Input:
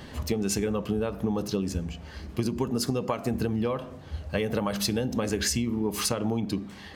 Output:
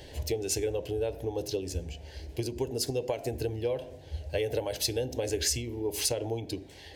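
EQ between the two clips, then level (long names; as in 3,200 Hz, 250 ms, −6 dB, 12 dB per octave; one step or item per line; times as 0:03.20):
phaser with its sweep stopped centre 500 Hz, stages 4
0.0 dB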